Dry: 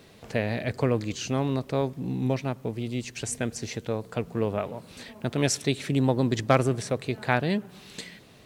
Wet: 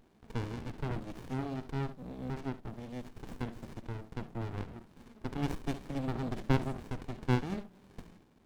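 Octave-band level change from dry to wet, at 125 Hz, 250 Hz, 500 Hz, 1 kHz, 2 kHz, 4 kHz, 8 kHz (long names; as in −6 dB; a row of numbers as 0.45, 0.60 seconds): −7.5, −9.0, −14.0, −10.0, −12.5, −14.5, −23.5 decibels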